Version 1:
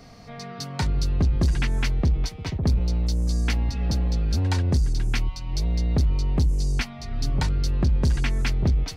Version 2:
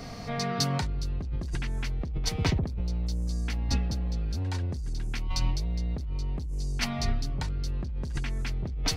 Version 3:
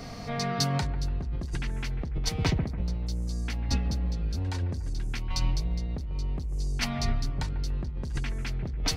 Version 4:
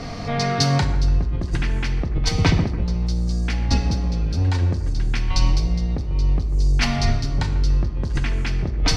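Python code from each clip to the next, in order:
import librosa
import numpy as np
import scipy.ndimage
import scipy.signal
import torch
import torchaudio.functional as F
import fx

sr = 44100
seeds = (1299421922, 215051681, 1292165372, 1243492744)

y1 = fx.over_compress(x, sr, threshold_db=-29.0, ratio=-1.0)
y2 = fx.echo_bbd(y1, sr, ms=144, stages=2048, feedback_pct=50, wet_db=-13)
y3 = fx.air_absorb(y2, sr, metres=61.0)
y3 = fx.rev_gated(y3, sr, seeds[0], gate_ms=230, shape='falling', drr_db=7.0)
y3 = y3 * 10.0 ** (9.0 / 20.0)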